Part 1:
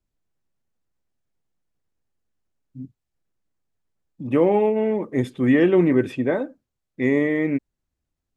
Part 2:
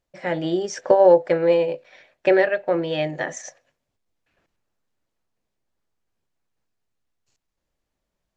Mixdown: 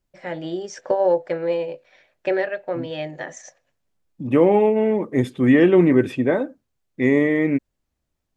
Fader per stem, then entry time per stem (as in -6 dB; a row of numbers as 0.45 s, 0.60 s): +2.5 dB, -5.0 dB; 0.00 s, 0.00 s